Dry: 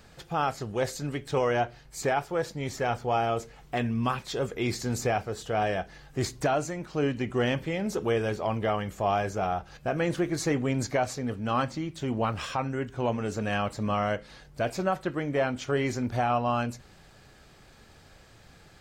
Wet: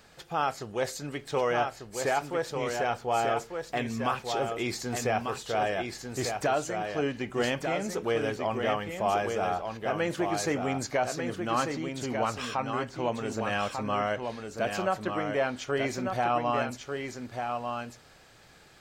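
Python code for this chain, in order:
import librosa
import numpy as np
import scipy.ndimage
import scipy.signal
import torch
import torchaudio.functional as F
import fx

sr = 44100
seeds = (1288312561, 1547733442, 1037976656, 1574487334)

p1 = fx.low_shelf(x, sr, hz=210.0, db=-10.0)
y = p1 + fx.echo_single(p1, sr, ms=1194, db=-5.5, dry=0)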